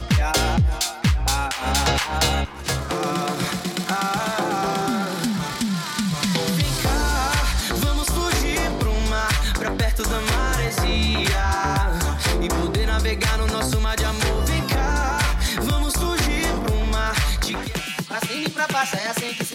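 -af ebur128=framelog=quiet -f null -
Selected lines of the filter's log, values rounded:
Integrated loudness:
  I:         -22.1 LUFS
  Threshold: -32.0 LUFS
Loudness range:
  LRA:         1.7 LU
  Threshold: -42.1 LUFS
  LRA low:   -23.1 LUFS
  LRA high:  -21.4 LUFS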